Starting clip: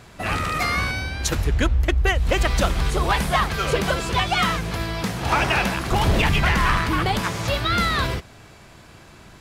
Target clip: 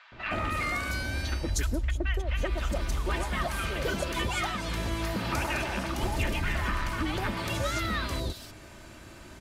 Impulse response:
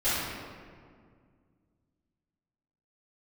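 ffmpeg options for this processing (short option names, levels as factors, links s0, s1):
-filter_complex "[0:a]aecho=1:1:3.3:0.43,acompressor=threshold=0.0562:ratio=6,acrossover=split=960|3900[s0][s1][s2];[s0]adelay=120[s3];[s2]adelay=310[s4];[s3][s1][s4]amix=inputs=3:normalize=0,volume=0.891"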